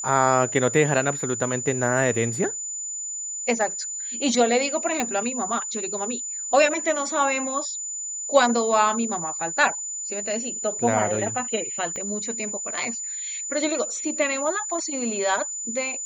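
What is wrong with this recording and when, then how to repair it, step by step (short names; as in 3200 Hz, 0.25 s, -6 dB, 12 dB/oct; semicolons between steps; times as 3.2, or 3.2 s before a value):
tone 7000 Hz -29 dBFS
5 pop -9 dBFS
11.96 pop -19 dBFS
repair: de-click; notch 7000 Hz, Q 30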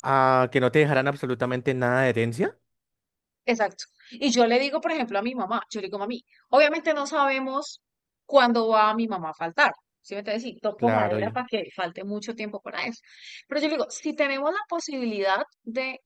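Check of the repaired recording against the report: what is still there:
11.96 pop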